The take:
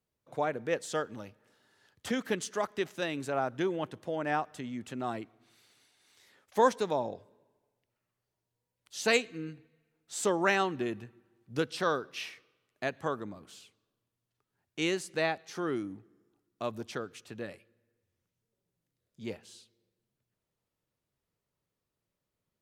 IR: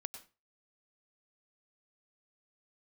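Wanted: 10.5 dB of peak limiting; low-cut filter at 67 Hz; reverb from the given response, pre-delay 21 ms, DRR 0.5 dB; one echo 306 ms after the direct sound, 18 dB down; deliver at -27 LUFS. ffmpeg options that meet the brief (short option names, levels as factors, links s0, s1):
-filter_complex "[0:a]highpass=67,alimiter=limit=0.0794:level=0:latency=1,aecho=1:1:306:0.126,asplit=2[s0][s1];[1:a]atrim=start_sample=2205,adelay=21[s2];[s1][s2]afir=irnorm=-1:irlink=0,volume=1.26[s3];[s0][s3]amix=inputs=2:normalize=0,volume=2.24"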